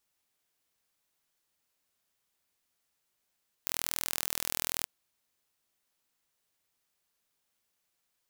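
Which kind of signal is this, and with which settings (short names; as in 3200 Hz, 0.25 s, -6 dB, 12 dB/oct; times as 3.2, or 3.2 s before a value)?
pulse train 41/s, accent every 0, -4.5 dBFS 1.18 s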